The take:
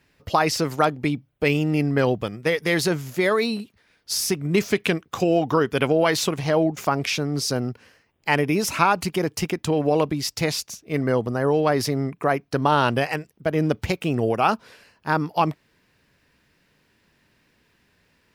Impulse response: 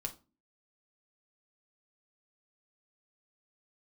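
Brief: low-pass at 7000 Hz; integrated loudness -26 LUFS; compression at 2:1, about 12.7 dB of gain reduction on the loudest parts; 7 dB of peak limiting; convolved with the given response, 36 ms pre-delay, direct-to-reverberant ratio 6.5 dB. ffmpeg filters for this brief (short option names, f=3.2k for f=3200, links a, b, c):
-filter_complex "[0:a]lowpass=7k,acompressor=threshold=-39dB:ratio=2,alimiter=limit=-24dB:level=0:latency=1,asplit=2[a][b];[1:a]atrim=start_sample=2205,adelay=36[c];[b][c]afir=irnorm=-1:irlink=0,volume=-6dB[d];[a][d]amix=inputs=2:normalize=0,volume=8.5dB"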